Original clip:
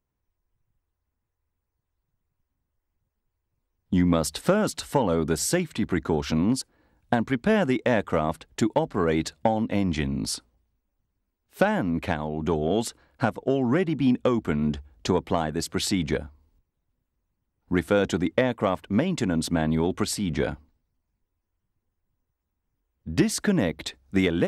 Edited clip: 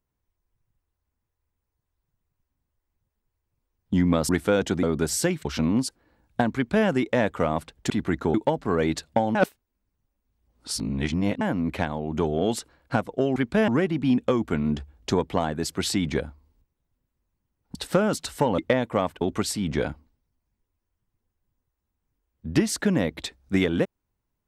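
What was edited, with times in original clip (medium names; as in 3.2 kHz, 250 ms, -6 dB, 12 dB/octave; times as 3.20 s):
4.29–5.12 s: swap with 17.72–18.26 s
5.74–6.18 s: move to 8.63 s
7.28–7.60 s: copy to 13.65 s
9.64–11.70 s: reverse
18.89–19.83 s: delete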